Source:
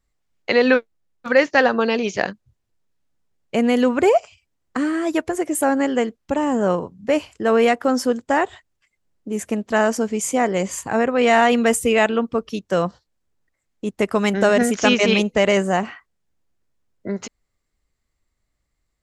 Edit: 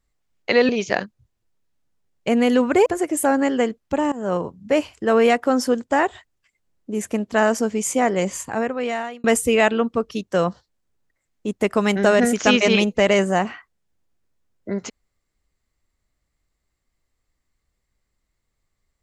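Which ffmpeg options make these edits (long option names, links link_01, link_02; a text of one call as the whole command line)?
ffmpeg -i in.wav -filter_complex "[0:a]asplit=5[link_01][link_02][link_03][link_04][link_05];[link_01]atrim=end=0.692[link_06];[link_02]atrim=start=1.958:end=4.132[link_07];[link_03]atrim=start=5.238:end=6.5,asetpts=PTS-STARTPTS,afade=type=out:start_time=1.258:duration=0.004:curve=hsin:silence=0.112202[link_08];[link_04]atrim=start=6.5:end=11.62,asetpts=PTS-STARTPTS,afade=type=in:duration=0.31:silence=0.112202,afade=type=out:start_time=4.12:duration=1[link_09];[link_05]atrim=start=11.62,asetpts=PTS-STARTPTS,afade=type=in:duration=0.004:curve=hsin[link_10];[link_06][link_07]acrossfade=duration=0.004:curve1=hsin:curve2=hsin[link_11];[link_08][link_09][link_10]concat=n=3:v=0:a=1[link_12];[link_11][link_12]acrossfade=duration=0.004:curve1=hsin:curve2=hsin" out.wav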